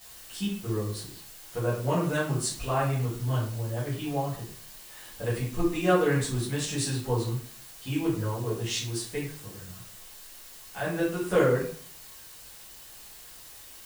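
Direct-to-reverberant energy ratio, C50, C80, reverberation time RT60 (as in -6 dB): -11.0 dB, 4.0 dB, 8.5 dB, 0.50 s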